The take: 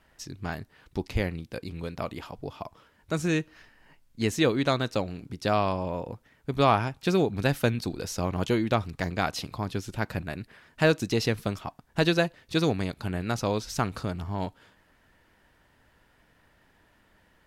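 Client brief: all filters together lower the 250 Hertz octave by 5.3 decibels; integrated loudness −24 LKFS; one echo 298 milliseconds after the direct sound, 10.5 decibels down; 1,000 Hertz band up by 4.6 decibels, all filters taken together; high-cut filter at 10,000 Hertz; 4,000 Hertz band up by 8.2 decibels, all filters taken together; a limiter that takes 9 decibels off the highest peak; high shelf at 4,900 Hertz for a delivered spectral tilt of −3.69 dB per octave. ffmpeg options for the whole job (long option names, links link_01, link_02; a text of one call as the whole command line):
ffmpeg -i in.wav -af "lowpass=10000,equalizer=frequency=250:width_type=o:gain=-8.5,equalizer=frequency=1000:width_type=o:gain=6,equalizer=frequency=4000:width_type=o:gain=6,highshelf=frequency=4900:gain=7.5,alimiter=limit=-13.5dB:level=0:latency=1,aecho=1:1:298:0.299,volume=5dB" out.wav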